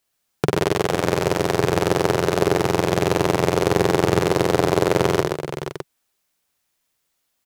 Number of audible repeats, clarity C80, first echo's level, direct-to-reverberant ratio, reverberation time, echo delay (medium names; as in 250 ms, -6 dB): 4, no reverb, -6.5 dB, no reverb, no reverb, 56 ms